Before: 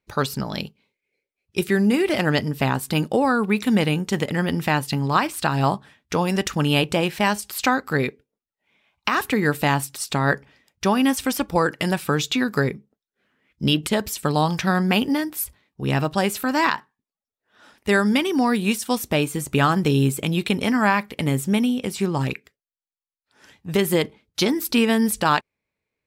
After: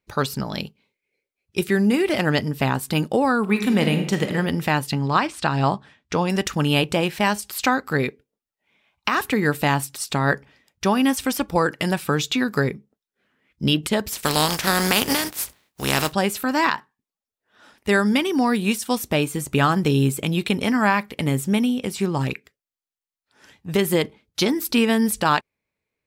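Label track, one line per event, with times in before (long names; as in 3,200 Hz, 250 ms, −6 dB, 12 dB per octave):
3.400000	4.310000	thrown reverb, RT60 1 s, DRR 6 dB
4.920000	6.300000	low-pass filter 7,000 Hz
14.110000	16.110000	compressing power law on the bin magnitudes exponent 0.45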